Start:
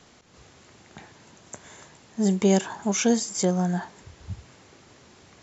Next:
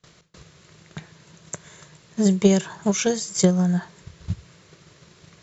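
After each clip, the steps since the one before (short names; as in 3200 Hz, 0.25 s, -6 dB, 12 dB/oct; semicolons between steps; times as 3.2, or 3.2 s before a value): gate with hold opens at -45 dBFS; thirty-one-band EQ 160 Hz +12 dB, 250 Hz -12 dB, 800 Hz -10 dB, 4000 Hz +3 dB; transient shaper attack +8 dB, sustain 0 dB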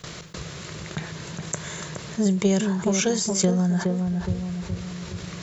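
on a send: darkening echo 0.418 s, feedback 34%, low-pass 1200 Hz, level -7 dB; on the sum: fast leveller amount 50%; gain -5.5 dB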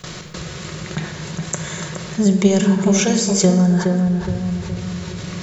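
shoebox room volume 2100 m³, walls mixed, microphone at 1 m; gain +4.5 dB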